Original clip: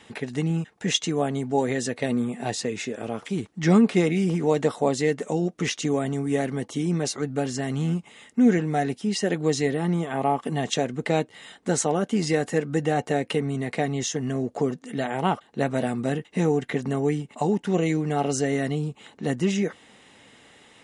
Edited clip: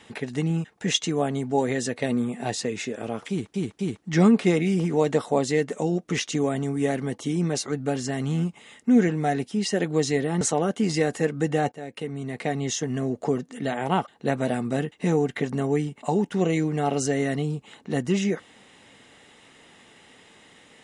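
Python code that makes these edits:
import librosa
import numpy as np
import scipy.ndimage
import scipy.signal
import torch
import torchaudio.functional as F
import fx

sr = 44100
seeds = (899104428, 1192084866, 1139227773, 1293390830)

y = fx.edit(x, sr, fx.repeat(start_s=3.29, length_s=0.25, count=3),
    fx.cut(start_s=9.91, length_s=1.83),
    fx.fade_in_from(start_s=13.05, length_s=0.97, floor_db=-17.0), tone=tone)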